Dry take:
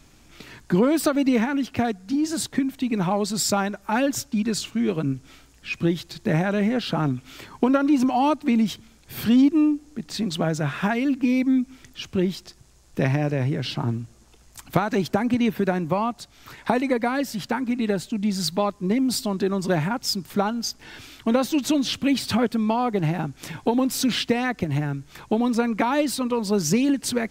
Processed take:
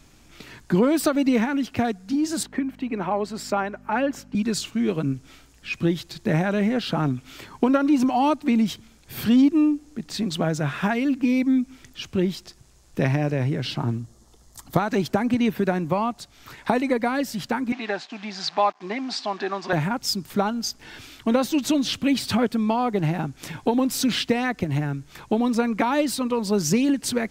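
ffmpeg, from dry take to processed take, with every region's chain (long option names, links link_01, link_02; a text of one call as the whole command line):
ffmpeg -i in.wav -filter_complex "[0:a]asettb=1/sr,asplit=3[link_01][link_02][link_03];[link_01]atrim=end=2.434[link_04];[link_02]atrim=start=2.43:end=4.35,asetpts=PTS-STARTPTS,afade=type=in:duration=0.004:curve=qsin,afade=type=out:start_time=1.916:duration=0.004:curve=qsin,bandreject=frequency=3600:width=11,aeval=exprs='val(0)+0.0224*(sin(2*PI*50*n/s)+sin(2*PI*2*50*n/s)/2+sin(2*PI*3*50*n/s)/3+sin(2*PI*4*50*n/s)/4+sin(2*PI*5*50*n/s)/5)':channel_layout=same,acrossover=split=220 3000:gain=0.0891 1 0.2[link_05][link_06][link_07];[link_05][link_06][link_07]amix=inputs=3:normalize=0[link_08];[link_03]atrim=start=4.346[link_09];[link_04][link_08]acrossfade=duration=0.004:curve1=hsin:curve2=qsin[link_10];[link_10][link_09]acrossfade=duration=0.004:curve1=qsin:curve2=hsin,asettb=1/sr,asplit=3[link_11][link_12][link_13];[link_11]atrim=end=13.994[link_14];[link_12]atrim=start=13.99:end=14.8,asetpts=PTS-STARTPTS,afade=type=in:duration=0.004:curve=qsin,afade=type=out:start_time=0.806:duration=0.004:curve=qsin,equalizer=frequency=2500:width_type=o:width=0.47:gain=-13,bandreject=frequency=1500:width=8[link_15];[link_13]atrim=start=14.796[link_16];[link_14][link_15]acrossfade=duration=0.004:curve1=hsin:curve2=qsin[link_17];[link_17][link_16]acrossfade=duration=0.004:curve1=qsin:curve2=hsin,asettb=1/sr,asplit=3[link_18][link_19][link_20];[link_18]atrim=end=17.724[link_21];[link_19]atrim=start=17.72:end=19.73,asetpts=PTS-STARTPTS,afade=type=in:duration=0.004:curve=qsin,afade=type=out:start_time=2.006:duration=0.004:curve=qsin,acrusher=bits=8:dc=4:mix=0:aa=0.000001,highpass=420,equalizer=frequency=490:width_type=q:width=4:gain=-7,equalizer=frequency=750:width_type=q:width=4:gain=10,equalizer=frequency=1100:width_type=q:width=4:gain=5,equalizer=frequency=1700:width_type=q:width=4:gain=6,equalizer=frequency=2400:width_type=q:width=4:gain=4,lowpass=frequency=5400:width=0.5412,lowpass=frequency=5400:width=1.3066[link_22];[link_20]atrim=start=19.726[link_23];[link_21][link_22]acrossfade=duration=0.004:curve1=hsin:curve2=qsin[link_24];[link_24][link_23]acrossfade=duration=0.004:curve1=qsin:curve2=hsin" out.wav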